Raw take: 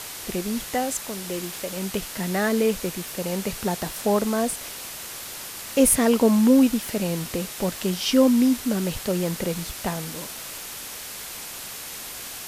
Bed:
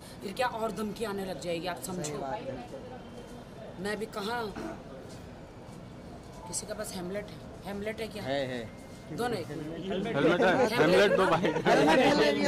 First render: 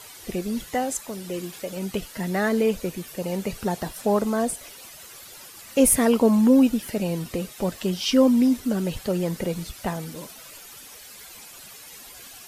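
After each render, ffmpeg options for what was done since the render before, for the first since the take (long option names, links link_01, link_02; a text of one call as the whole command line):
ffmpeg -i in.wav -af "afftdn=noise_reduction=12:noise_floor=-37" out.wav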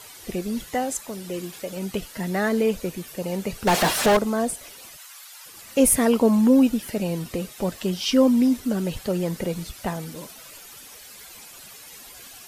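ffmpeg -i in.wav -filter_complex "[0:a]asettb=1/sr,asplit=3[link_01][link_02][link_03];[link_01]atrim=end=3.674[link_04];[link_02]atrim=start=3.67:end=4.17,asetpts=PTS-STARTPTS,afade=type=in:duration=0.004:curve=qsin,afade=type=out:start_time=0.496:duration=0.004:curve=qsin,asplit=2[link_05][link_06];[link_06]highpass=frequency=720:poles=1,volume=33dB,asoftclip=type=tanh:threshold=-10.5dB[link_07];[link_05][link_07]amix=inputs=2:normalize=0,lowpass=frequency=3700:poles=1,volume=-6dB[link_08];[link_03]atrim=start=4.166[link_09];[link_04][link_08]acrossfade=duration=0.004:curve1=hsin:curve2=qsin[link_10];[link_10][link_09]acrossfade=duration=0.004:curve1=qsin:curve2=hsin,asplit=3[link_11][link_12][link_13];[link_11]afade=type=out:start_time=4.96:duration=0.02[link_14];[link_12]highpass=frequency=820:width=0.5412,highpass=frequency=820:width=1.3066,afade=type=in:start_time=4.96:duration=0.02,afade=type=out:start_time=5.45:duration=0.02[link_15];[link_13]afade=type=in:start_time=5.45:duration=0.02[link_16];[link_14][link_15][link_16]amix=inputs=3:normalize=0" out.wav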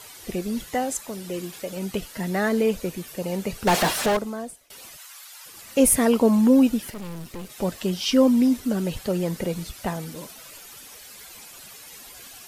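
ffmpeg -i in.wav -filter_complex "[0:a]asettb=1/sr,asplit=3[link_01][link_02][link_03];[link_01]atrim=end=6.904[link_04];[link_02]atrim=start=6.9:end=7.5,asetpts=PTS-STARTPTS,afade=type=in:duration=0.004:curve=qsin,afade=type=out:start_time=0.596:duration=0.004:curve=qsin,aeval=exprs='(tanh(44.7*val(0)+0.7)-tanh(0.7))/44.7':channel_layout=same[link_05];[link_03]atrim=start=7.496[link_06];[link_04][link_05]acrossfade=duration=0.004:curve1=hsin:curve2=qsin[link_07];[link_07][link_06]acrossfade=duration=0.004:curve1=qsin:curve2=hsin,asplit=2[link_08][link_09];[link_08]atrim=end=4.7,asetpts=PTS-STARTPTS,afade=type=out:start_time=3.73:duration=0.97:silence=0.0668344[link_10];[link_09]atrim=start=4.7,asetpts=PTS-STARTPTS,afade=type=in:duration=0.004:curve=hsin:silence=0.0668344[link_11];[link_10][link_11]concat=n=2:v=0:a=1" out.wav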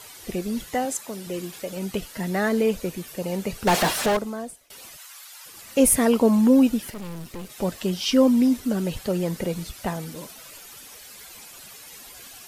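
ffmpeg -i in.wav -filter_complex "[0:a]asettb=1/sr,asplit=3[link_01][link_02][link_03];[link_01]atrim=end=0.854[link_04];[link_02]atrim=start=0.85:end=1.27,asetpts=PTS-STARTPTS,afade=type=in:duration=0.004:curve=qsin,afade=type=out:start_time=0.416:duration=0.004:curve=qsin,highpass=130[link_05];[link_03]atrim=start=1.266[link_06];[link_04][link_05]acrossfade=duration=0.004:curve1=hsin:curve2=qsin[link_07];[link_07][link_06]acrossfade=duration=0.004:curve1=qsin:curve2=hsin" out.wav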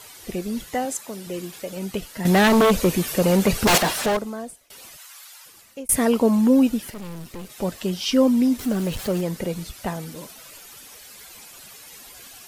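ffmpeg -i in.wav -filter_complex "[0:a]asettb=1/sr,asplit=3[link_01][link_02][link_03];[link_01]atrim=end=2.254[link_04];[link_02]atrim=start=2.25:end=3.78,asetpts=PTS-STARTPTS,afade=type=in:duration=0.004:curve=qsin,afade=type=out:start_time=1.526:duration=0.004:curve=qsin,aeval=exprs='0.251*sin(PI/2*2.51*val(0)/0.251)':channel_layout=same[link_05];[link_03]atrim=start=3.776[link_06];[link_04][link_05]acrossfade=duration=0.004:curve1=hsin:curve2=qsin[link_07];[link_07][link_06]acrossfade=duration=0.004:curve1=qsin:curve2=hsin,asettb=1/sr,asplit=3[link_08][link_09][link_10];[link_08]atrim=end=8.594[link_11];[link_09]atrim=start=8.59:end=9.21,asetpts=PTS-STARTPTS,afade=type=in:duration=0.004:curve=qsin,afade=type=out:start_time=0.616:duration=0.004:curve=qsin,aeval=exprs='val(0)+0.5*0.0251*sgn(val(0))':channel_layout=same[link_12];[link_10]atrim=start=9.206[link_13];[link_11][link_12]acrossfade=duration=0.004:curve1=hsin:curve2=qsin[link_14];[link_14][link_13]acrossfade=duration=0.004:curve1=qsin:curve2=hsin,asplit=2[link_15][link_16];[link_15]atrim=end=5.89,asetpts=PTS-STARTPTS,afade=type=out:start_time=5.29:duration=0.6[link_17];[link_16]atrim=start=5.89,asetpts=PTS-STARTPTS,afade=type=in:duration=0.004:curve=hsin[link_18];[link_17][link_18]concat=n=2:v=0:a=1" out.wav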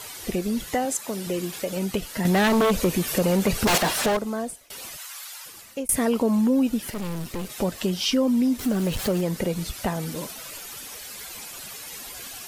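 ffmpeg -i in.wav -filter_complex "[0:a]asplit=2[link_01][link_02];[link_02]alimiter=limit=-14dB:level=0:latency=1:release=24,volume=-1.5dB[link_03];[link_01][link_03]amix=inputs=2:normalize=0,acompressor=threshold=-25dB:ratio=2" out.wav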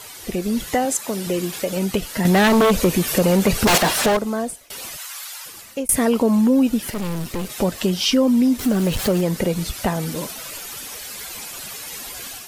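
ffmpeg -i in.wav -af "dynaudnorm=framelen=280:gausssize=3:maxgain=5dB" out.wav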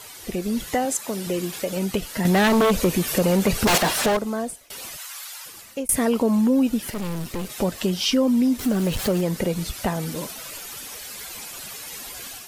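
ffmpeg -i in.wav -af "volume=-3dB" out.wav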